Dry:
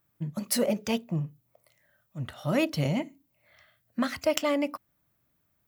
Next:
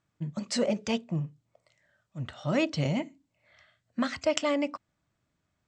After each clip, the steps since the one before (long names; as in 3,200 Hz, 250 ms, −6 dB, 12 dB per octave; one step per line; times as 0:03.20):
elliptic low-pass filter 7,900 Hz, stop band 40 dB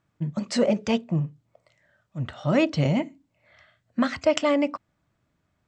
high-shelf EQ 3,400 Hz −7.5 dB
level +6 dB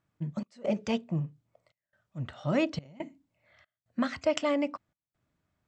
gate pattern "xx.xxxxx.xxxx.x" 70 BPM −24 dB
level −6 dB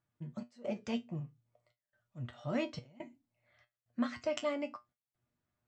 tuned comb filter 120 Hz, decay 0.17 s, harmonics all, mix 80%
level −1 dB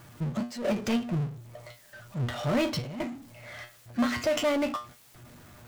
power curve on the samples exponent 0.5
level +2 dB